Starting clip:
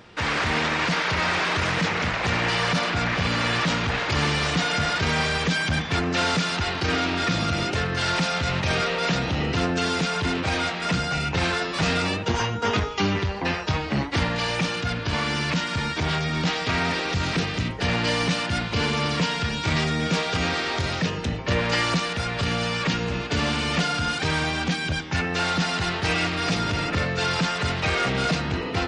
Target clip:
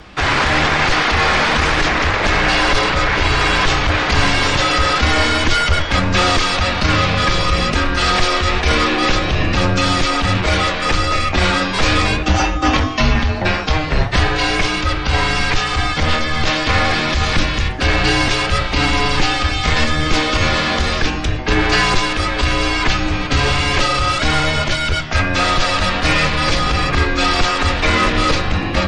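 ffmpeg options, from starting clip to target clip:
-af "acontrast=72,flanger=delay=9.3:depth=6.6:regen=82:speed=1.6:shape=triangular,afreqshift=-160,volume=2.24"

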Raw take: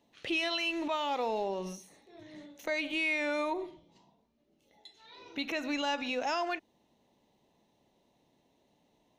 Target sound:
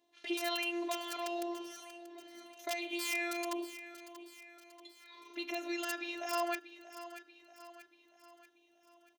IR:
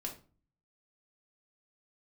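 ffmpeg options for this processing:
-af "aeval=exprs='(mod(14.1*val(0)+1,2)-1)/14.1':c=same,afftfilt=real='hypot(re,im)*cos(PI*b)':imag='0':win_size=512:overlap=0.75,highpass=f=240:p=1,aecho=1:1:635|1270|1905|2540|3175:0.211|0.106|0.0528|0.0264|0.0132"

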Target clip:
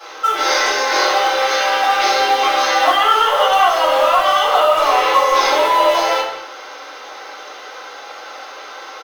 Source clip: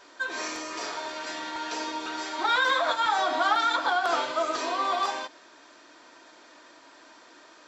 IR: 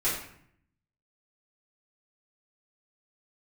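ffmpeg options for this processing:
-filter_complex "[0:a]highpass=f=510:w=0.5412,highpass=f=510:w=1.3066,asplit=2[s0][s1];[s1]alimiter=limit=0.0891:level=0:latency=1:release=20,volume=1.26[s2];[s0][s2]amix=inputs=2:normalize=0,acompressor=threshold=0.0794:ratio=16,acrusher=bits=6:mode=log:mix=0:aa=0.000001,asetrate=37485,aresample=44100,asplit=2[s3][s4];[s4]adelay=170,highpass=300,lowpass=3400,asoftclip=type=hard:threshold=0.0631,volume=0.251[s5];[s3][s5]amix=inputs=2:normalize=0[s6];[1:a]atrim=start_sample=2205,atrim=end_sample=6615[s7];[s6][s7]afir=irnorm=-1:irlink=0,volume=1.58"

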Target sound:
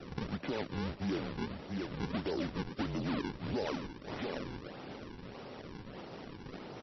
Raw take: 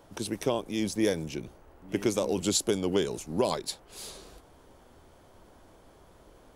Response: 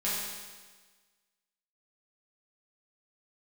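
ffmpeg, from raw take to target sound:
-filter_complex "[0:a]asplit=2[s0][s1];[s1]aecho=0:1:654:0.119[s2];[s0][s2]amix=inputs=2:normalize=0,alimiter=limit=0.0944:level=0:latency=1:release=21,asetrate=42336,aresample=44100,adynamicequalizer=threshold=0.00158:dfrequency=690:dqfactor=6.8:tfrequency=690:tqfactor=6.8:attack=5:release=100:ratio=0.375:range=3.5:mode=boostabove:tftype=bell,acompressor=threshold=0.00631:ratio=3,aresample=11025,asoftclip=type=tanh:threshold=0.01,aresample=44100,highpass=f=230:t=q:w=0.5412,highpass=f=230:t=q:w=1.307,lowpass=f=3600:t=q:w=0.5176,lowpass=f=3600:t=q:w=0.7071,lowpass=f=3600:t=q:w=1.932,afreqshift=-120,acrusher=samples=40:mix=1:aa=0.000001:lfo=1:lforange=64:lforate=1.6,volume=3.98" -ar 22050 -c:a libmp3lame -b:a 24k

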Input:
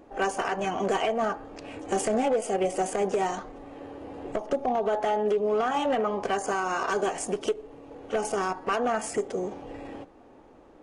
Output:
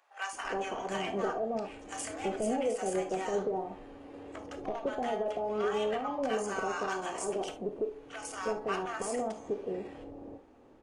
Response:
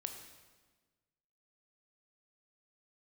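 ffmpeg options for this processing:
-filter_complex "[0:a]asettb=1/sr,asplit=3[s0][s1][s2];[s0]atrim=end=5.014[s3];[s1]atrim=start=5.01:end=5.65,asetpts=PTS-STARTPTS,afade=t=in:d=0.004:c=qsin,afade=t=out:st=0.636:d=0.004:c=qsin,aeval=exprs='val(0)+0.002*(sin(2*PI*60*n/s)+sin(2*PI*2*60*n/s)/2+sin(2*PI*3*60*n/s)/3+sin(2*PI*4*60*n/s)/4+sin(2*PI*5*60*n/s)/5)':c=same[s4];[s2]atrim=start=5.646[s5];[s3][s4]acrossfade=d=0.004:c1=hsin:c2=qsin[s6];[s6][s5]acrossfade=d=0.004:c1=qsin:c2=hsin,acrossover=split=870[s7][s8];[s7]adelay=330[s9];[s9][s8]amix=inputs=2:normalize=0[s10];[1:a]atrim=start_sample=2205,atrim=end_sample=3528[s11];[s10][s11]afir=irnorm=-1:irlink=0,volume=0.75"

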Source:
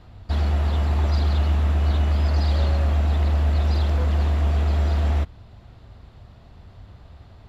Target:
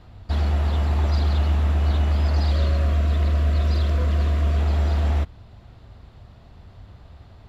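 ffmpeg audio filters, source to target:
-filter_complex "[0:a]asettb=1/sr,asplit=3[s0][s1][s2];[s0]atrim=end=2.514[s3];[s1]atrim=start=2.51:end=4.59,asetpts=PTS-STARTPTS,afade=t=in:d=0.004:c=qsin,afade=t=out:st=2.076:d=0.004:c=qsin,asuperstop=centerf=830:order=12:qfactor=4.1[s4];[s2]atrim=start=4.586[s5];[s3][s4]acrossfade=d=0.004:c1=hsin:c2=qsin[s6];[s6][s5]acrossfade=d=0.004:c1=qsin:c2=hsin"

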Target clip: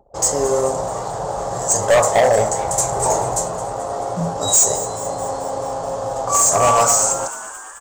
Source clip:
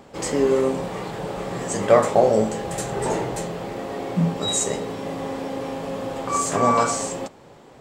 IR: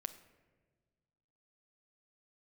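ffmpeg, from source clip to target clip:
-filter_complex "[0:a]anlmdn=0.631,firequalizer=gain_entry='entry(110,0);entry(210,-16);entry(660,5);entry(2300,-16);entry(6600,11);entry(10000,3)':delay=0.05:min_phase=1,acontrast=29,asoftclip=type=hard:threshold=0.299,asplit=2[s0][s1];[s1]asplit=7[s2][s3][s4][s5][s6][s7][s8];[s2]adelay=217,afreqshift=110,volume=0.178[s9];[s3]adelay=434,afreqshift=220,volume=0.112[s10];[s4]adelay=651,afreqshift=330,volume=0.0708[s11];[s5]adelay=868,afreqshift=440,volume=0.0447[s12];[s6]adelay=1085,afreqshift=550,volume=0.0279[s13];[s7]adelay=1302,afreqshift=660,volume=0.0176[s14];[s8]adelay=1519,afreqshift=770,volume=0.0111[s15];[s9][s10][s11][s12][s13][s14][s15]amix=inputs=7:normalize=0[s16];[s0][s16]amix=inputs=2:normalize=0,volume=1.12"

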